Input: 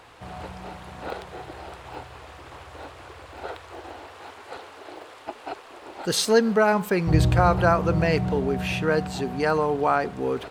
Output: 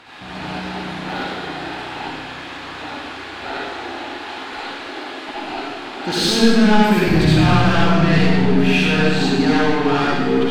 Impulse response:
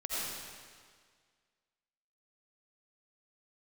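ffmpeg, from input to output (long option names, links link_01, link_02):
-filter_complex "[0:a]asplit=2[link_01][link_02];[link_02]highpass=frequency=720:poles=1,volume=25dB,asoftclip=type=tanh:threshold=-4.5dB[link_03];[link_01][link_03]amix=inputs=2:normalize=0,lowpass=frequency=1100:poles=1,volume=-6dB,equalizer=frequency=250:width_type=o:width=1:gain=8,equalizer=frequency=500:width_type=o:width=1:gain=-12,equalizer=frequency=1000:width_type=o:width=1:gain=-7,equalizer=frequency=4000:width_type=o:width=1:gain=6[link_04];[1:a]atrim=start_sample=2205,asetrate=57330,aresample=44100[link_05];[link_04][link_05]afir=irnorm=-1:irlink=0,volume=1dB"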